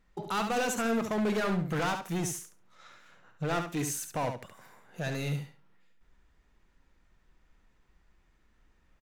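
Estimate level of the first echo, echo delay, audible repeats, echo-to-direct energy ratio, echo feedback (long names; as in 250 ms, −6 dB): −7.0 dB, 70 ms, 2, −7.0 dB, 17%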